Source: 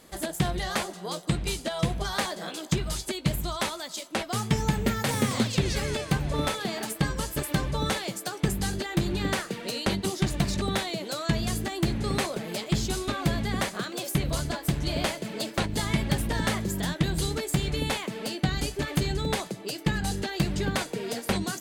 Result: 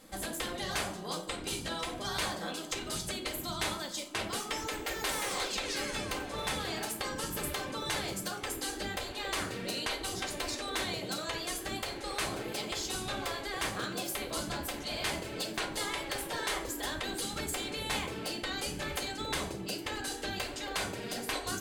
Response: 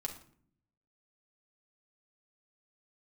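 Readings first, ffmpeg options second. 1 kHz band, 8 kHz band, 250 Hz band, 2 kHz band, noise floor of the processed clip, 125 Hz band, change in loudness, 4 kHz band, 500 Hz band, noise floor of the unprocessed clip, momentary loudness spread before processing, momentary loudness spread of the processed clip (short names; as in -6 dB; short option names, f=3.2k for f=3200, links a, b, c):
-4.5 dB, -2.5 dB, -11.5 dB, -3.5 dB, -42 dBFS, -17.0 dB, -6.0 dB, -2.5 dB, -6.5 dB, -42 dBFS, 4 LU, 3 LU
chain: -filter_complex "[1:a]atrim=start_sample=2205,asetrate=52920,aresample=44100[a];[0:a][a]afir=irnorm=-1:irlink=0,afftfilt=real='re*lt(hypot(re,im),0.112)':imag='im*lt(hypot(re,im),0.112)':win_size=1024:overlap=0.75"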